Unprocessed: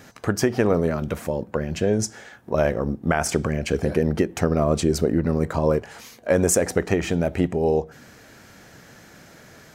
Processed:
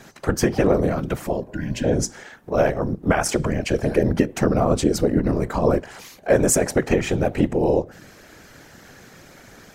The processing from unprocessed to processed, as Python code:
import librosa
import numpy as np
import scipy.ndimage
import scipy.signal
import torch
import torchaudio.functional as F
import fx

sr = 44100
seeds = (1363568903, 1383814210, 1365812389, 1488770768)

y = fx.whisperise(x, sr, seeds[0])
y = fx.spec_repair(y, sr, seeds[1], start_s=1.49, length_s=0.33, low_hz=340.0, high_hz=1400.0, source='before')
y = y * 10.0 ** (1.5 / 20.0)